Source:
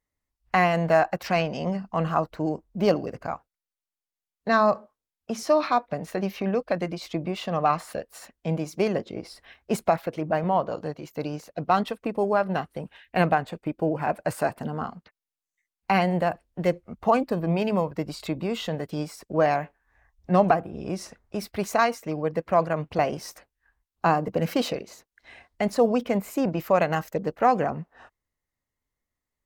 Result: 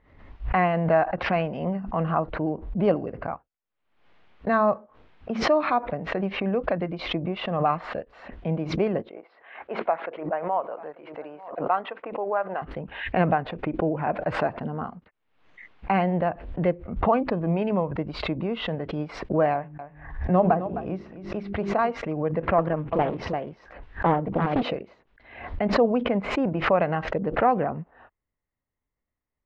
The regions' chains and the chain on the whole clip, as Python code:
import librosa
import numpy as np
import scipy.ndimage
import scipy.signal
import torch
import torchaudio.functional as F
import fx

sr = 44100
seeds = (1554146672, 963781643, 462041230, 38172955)

y = fx.chain(x, sr, fx.bandpass_edges(low_hz=580.0, high_hz=2300.0),
    fx.echo_single(ms=891, db=-22.0), at=(9.09, 12.62))
y = fx.chain(y, sr, fx.dynamic_eq(hz=2200.0, q=1.2, threshold_db=-41.0, ratio=4.0, max_db=-5),
    fx.hum_notches(base_hz=50, count=8),
    fx.echo_single(ms=260, db=-12.0), at=(19.53, 21.91))
y = fx.chain(y, sr, fx.echo_single(ms=344, db=-5.5),
    fx.doppler_dist(depth_ms=0.83), at=(22.58, 24.63))
y = scipy.signal.sosfilt(scipy.signal.butter(4, 3200.0, 'lowpass', fs=sr, output='sos'), y)
y = fx.high_shelf(y, sr, hz=2200.0, db=-9.0)
y = fx.pre_swell(y, sr, db_per_s=80.0)